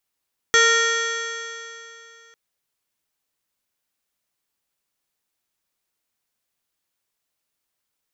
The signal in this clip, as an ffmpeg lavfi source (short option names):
-f lavfi -i "aevalsrc='0.106*pow(10,-3*t/2.81)*sin(2*PI*457.41*t)+0.02*pow(10,-3*t/2.81)*sin(2*PI*917.28*t)+0.133*pow(10,-3*t/2.81)*sin(2*PI*1382.06*t)+0.168*pow(10,-3*t/2.81)*sin(2*PI*1854.14*t)+0.0447*pow(10,-3*t/2.81)*sin(2*PI*2335.85*t)+0.0178*pow(10,-3*t/2.81)*sin(2*PI*2829.45*t)+0.1*pow(10,-3*t/2.81)*sin(2*PI*3337.1*t)+0.0133*pow(10,-3*t/2.81)*sin(2*PI*3860.85*t)+0.0335*pow(10,-3*t/2.81)*sin(2*PI*4402.64*t)+0.0133*pow(10,-3*t/2.81)*sin(2*PI*4964.29*t)+0.0422*pow(10,-3*t/2.81)*sin(2*PI*5547.49*t)+0.1*pow(10,-3*t/2.81)*sin(2*PI*6153.82*t)+0.0126*pow(10,-3*t/2.81)*sin(2*PI*6784.72*t)+0.0299*pow(10,-3*t/2.81)*sin(2*PI*7441.51*t)':d=1.8:s=44100"